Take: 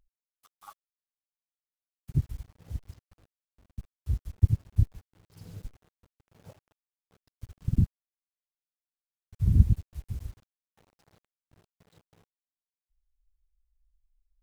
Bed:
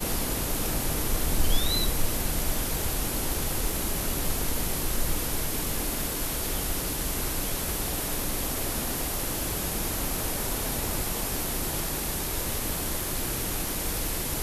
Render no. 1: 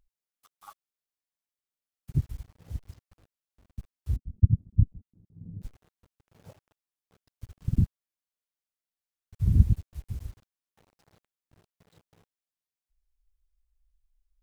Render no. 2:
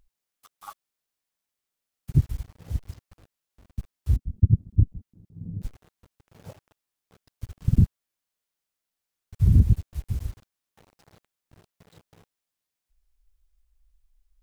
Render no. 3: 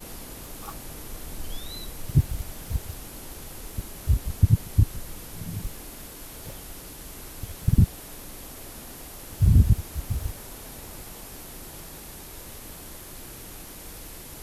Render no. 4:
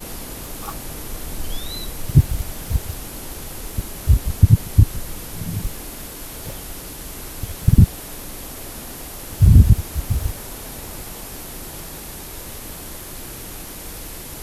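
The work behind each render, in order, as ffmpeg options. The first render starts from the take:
ffmpeg -i in.wav -filter_complex "[0:a]asettb=1/sr,asplit=3[link_01][link_02][link_03];[link_01]atrim=end=4.164[link_04];[link_02]atrim=start=4.16:end=5.62,asetpts=PTS-STARTPTS,afade=type=in:duration=0.004:curve=qsin,afade=type=out:start_time=1.456:duration=0.004:curve=qsin,lowpass=frequency=220:width_type=q:width=2.2[link_05];[link_03]atrim=start=5.616[link_06];[link_04][link_05]acrossfade=duration=0.004:curve1=hsin:curve2=qsin[link_07];[link_07][link_06]acrossfade=duration=0.004:curve1=qsin:curve2=hsin" out.wav
ffmpeg -i in.wav -af "acontrast=81,alimiter=limit=-8dB:level=0:latency=1:release=120" out.wav
ffmpeg -i in.wav -i bed.wav -filter_complex "[1:a]volume=-11.5dB[link_01];[0:a][link_01]amix=inputs=2:normalize=0" out.wav
ffmpeg -i in.wav -af "volume=7.5dB,alimiter=limit=-1dB:level=0:latency=1" out.wav

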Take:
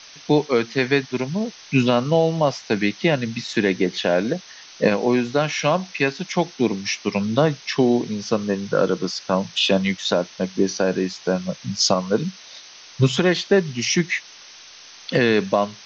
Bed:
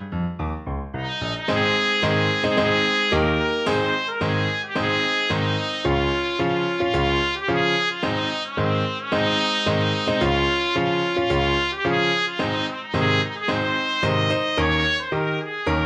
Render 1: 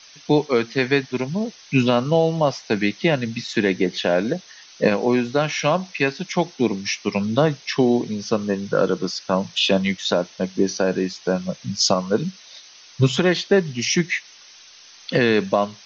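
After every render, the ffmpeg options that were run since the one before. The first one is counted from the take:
ffmpeg -i in.wav -af "afftdn=noise_reduction=6:noise_floor=-44" out.wav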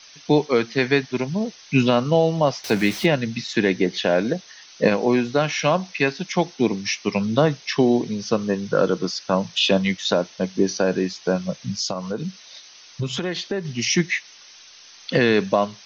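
ffmpeg -i in.wav -filter_complex "[0:a]asettb=1/sr,asplit=3[link_01][link_02][link_03];[link_01]atrim=end=2.644[link_04];[link_02]atrim=start=2.64:end=3.06,asetpts=PTS-STARTPTS,afade=type=in:duration=0.004:curve=qsin,afade=type=out:start_time=0.416:duration=0.004:curve=qsin,aeval=exprs='val(0)+0.5*0.0376*sgn(val(0))':channel_layout=same[link_05];[link_03]atrim=start=3.056[link_06];[link_04][link_05]acrossfade=duration=0.004:curve1=hsin:curve2=qsin[link_07];[link_07][link_06]acrossfade=duration=0.004:curve1=qsin:curve2=hsin,asettb=1/sr,asplit=3[link_08][link_09][link_10];[link_08]atrim=end=11.734[link_11];[link_09]atrim=start=11.73:end=13.65,asetpts=PTS-STARTPTS,afade=type=in:duration=0.004:curve=qsin,afade=type=out:start_time=1.916:duration=0.004:curve=qsin,acompressor=threshold=-24dB:ratio=3:attack=3.2:release=140:knee=1:detection=peak[link_12];[link_10]atrim=start=13.646[link_13];[link_11][link_12]acrossfade=duration=0.004:curve1=hsin:curve2=qsin[link_14];[link_14][link_13]acrossfade=duration=0.004:curve1=qsin:curve2=hsin" out.wav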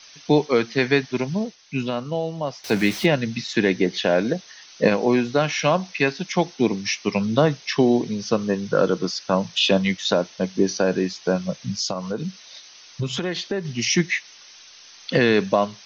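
ffmpeg -i in.wav -filter_complex "[0:a]asplit=3[link_01][link_02][link_03];[link_01]atrim=end=1.56,asetpts=PTS-STARTPTS,afade=type=out:start_time=1.38:duration=0.18:silence=0.398107[link_04];[link_02]atrim=start=1.56:end=2.57,asetpts=PTS-STARTPTS,volume=-8dB[link_05];[link_03]atrim=start=2.57,asetpts=PTS-STARTPTS,afade=type=in:duration=0.18:silence=0.398107[link_06];[link_04][link_05][link_06]concat=n=3:v=0:a=1" out.wav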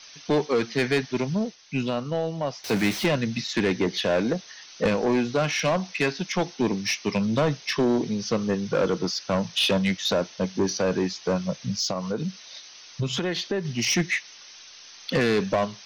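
ffmpeg -i in.wav -af "asoftclip=type=tanh:threshold=-16.5dB" out.wav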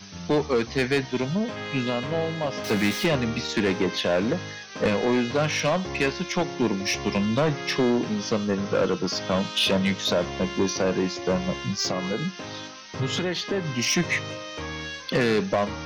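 ffmpeg -i in.wav -i bed.wav -filter_complex "[1:a]volume=-13.5dB[link_01];[0:a][link_01]amix=inputs=2:normalize=0" out.wav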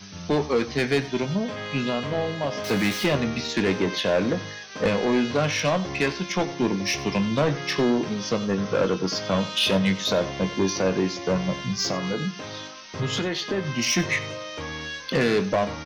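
ffmpeg -i in.wav -filter_complex "[0:a]asplit=2[link_01][link_02];[link_02]adelay=21,volume=-11.5dB[link_03];[link_01][link_03]amix=inputs=2:normalize=0,aecho=1:1:93:0.141" out.wav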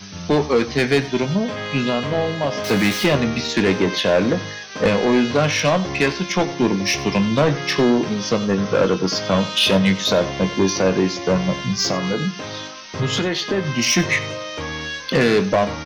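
ffmpeg -i in.wav -af "volume=5.5dB" out.wav

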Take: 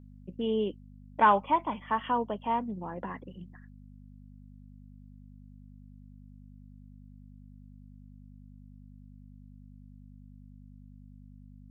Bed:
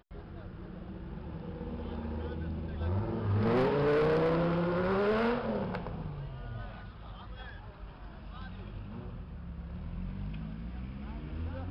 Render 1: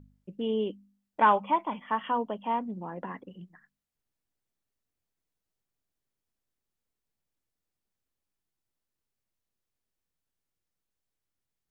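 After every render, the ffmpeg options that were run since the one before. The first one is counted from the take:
ffmpeg -i in.wav -af "bandreject=frequency=50:width_type=h:width=4,bandreject=frequency=100:width_type=h:width=4,bandreject=frequency=150:width_type=h:width=4,bandreject=frequency=200:width_type=h:width=4,bandreject=frequency=250:width_type=h:width=4" out.wav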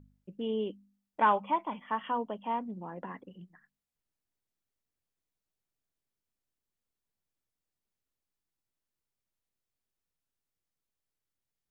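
ffmpeg -i in.wav -af "volume=-3.5dB" out.wav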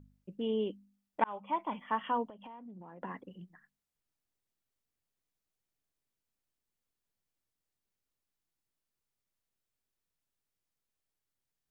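ffmpeg -i in.wav -filter_complex "[0:a]asettb=1/sr,asplit=3[link_01][link_02][link_03];[link_01]atrim=end=2.284[link_04];[link_02]atrim=start=2.28:end=3.02,asetpts=PTS-STARTPTS,afade=type=in:duration=0.004:curve=qsin,afade=type=out:start_time=0.736:duration=0.004:curve=qsin,acompressor=threshold=-45dB:ratio=16:attack=3.2:release=140:knee=1:detection=peak[link_05];[link_03]atrim=start=3.016[link_06];[link_04][link_05]acrossfade=duration=0.004:curve1=hsin:curve2=qsin[link_07];[link_07][link_06]acrossfade=duration=0.004:curve1=qsin:curve2=hsin,asplit=2[link_08][link_09];[link_08]atrim=end=1.24,asetpts=PTS-STARTPTS,afade=type=out:start_time=1.236:duration=0.004:curve=hsin[link_10];[link_09]atrim=start=1.24,asetpts=PTS-STARTPTS,afade=type=in:duration=0.47[link_11];[link_10][link_11]concat=n=2:v=0:a=1" out.wav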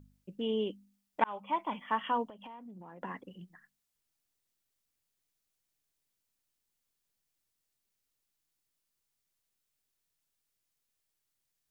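ffmpeg -i in.wav -af "highshelf=frequency=2300:gain=7.5" out.wav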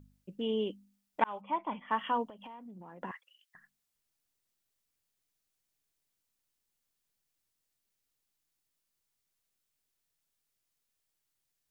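ffmpeg -i in.wav -filter_complex "[0:a]asettb=1/sr,asplit=3[link_01][link_02][link_03];[link_01]atrim=end=1.414[link_04];[link_02]atrim=start=1.41:end=1.91,asetpts=PTS-STARTPTS,afade=type=in:duration=0.004:curve=qsin,afade=type=out:start_time=0.496:duration=0.004:curve=qsin,lowpass=frequency=2000:poles=1[link_05];[link_03]atrim=start=1.906[link_06];[link_04][link_05]acrossfade=duration=0.004:curve1=hsin:curve2=qsin[link_07];[link_07][link_06]acrossfade=duration=0.004:curve1=qsin:curve2=hsin,asettb=1/sr,asplit=3[link_08][link_09][link_10];[link_08]atrim=end=3.114[link_11];[link_09]atrim=start=3.11:end=3.55,asetpts=PTS-STARTPTS,afade=type=in:duration=0.004:curve=qsin,afade=type=out:start_time=0.436:duration=0.004:curve=qsin,highpass=frequency=1400:width=0.5412,highpass=frequency=1400:width=1.3066[link_12];[link_10]atrim=start=3.546[link_13];[link_11][link_12]acrossfade=duration=0.004:curve1=hsin:curve2=qsin[link_14];[link_14][link_13]acrossfade=duration=0.004:curve1=qsin:curve2=hsin" out.wav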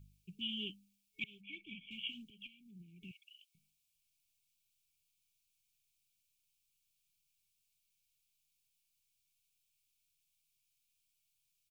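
ffmpeg -i in.wav -af "afftfilt=real='re*(1-between(b*sr/4096,420,2200))':imag='im*(1-between(b*sr/4096,420,2200))':win_size=4096:overlap=0.75,firequalizer=gain_entry='entry(160,0);entry(250,-15);entry(560,-18);entry(1000,8);entry(4300,2)':delay=0.05:min_phase=1" out.wav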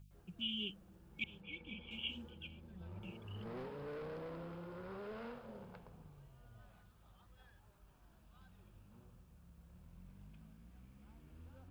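ffmpeg -i in.wav -i bed.wav -filter_complex "[1:a]volume=-19dB[link_01];[0:a][link_01]amix=inputs=2:normalize=0" out.wav

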